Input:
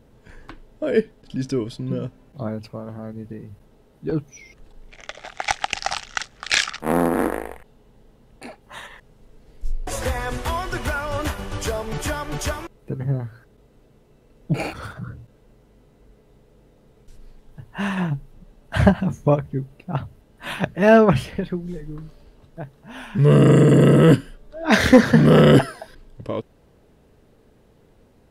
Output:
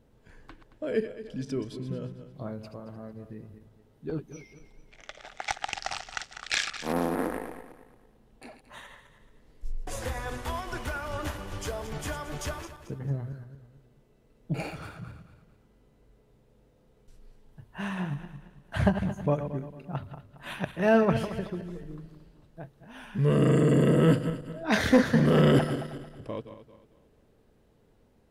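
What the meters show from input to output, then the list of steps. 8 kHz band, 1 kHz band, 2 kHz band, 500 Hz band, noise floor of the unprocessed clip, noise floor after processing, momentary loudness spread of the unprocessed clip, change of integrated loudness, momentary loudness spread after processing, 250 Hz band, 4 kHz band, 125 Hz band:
−8.5 dB, −8.5 dB, −8.5 dB, −8.5 dB, −56 dBFS, −63 dBFS, 24 LU, −8.5 dB, 24 LU, −8.5 dB, −8.5 dB, −8.5 dB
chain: feedback delay that plays each chunk backwards 112 ms, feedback 58%, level −10 dB
level −9 dB

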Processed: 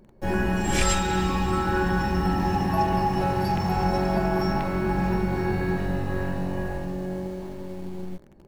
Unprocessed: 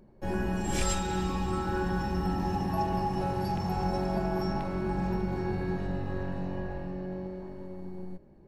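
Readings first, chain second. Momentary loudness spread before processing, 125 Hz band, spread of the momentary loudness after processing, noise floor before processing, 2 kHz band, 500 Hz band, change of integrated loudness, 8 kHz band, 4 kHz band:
10 LU, +5.5 dB, 11 LU, −54 dBFS, +10.0 dB, +6.0 dB, +6.5 dB, +6.0 dB, +7.5 dB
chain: dynamic equaliser 2,000 Hz, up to +5 dB, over −48 dBFS, Q 0.91
in parallel at −7 dB: bit-depth reduction 8 bits, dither none
on the sum: level +2.5 dB

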